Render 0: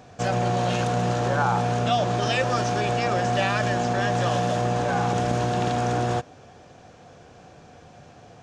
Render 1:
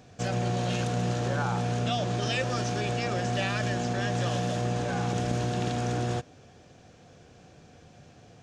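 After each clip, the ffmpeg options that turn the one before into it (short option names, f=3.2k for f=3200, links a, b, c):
-af "equalizer=f=910:w=0.82:g=-7.5,volume=-2.5dB"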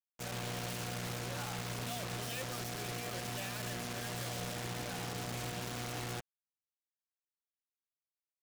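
-filter_complex "[0:a]asplit=2[a][b];[b]aeval=exprs='(mod(17.8*val(0)+1,2)-1)/17.8':c=same,volume=-5.5dB[c];[a][c]amix=inputs=2:normalize=0,acrusher=bits=3:mix=0:aa=0.5,asoftclip=type=tanh:threshold=-28dB,volume=-5.5dB"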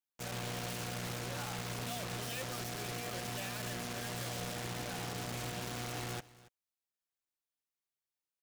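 -af "aecho=1:1:279:0.1"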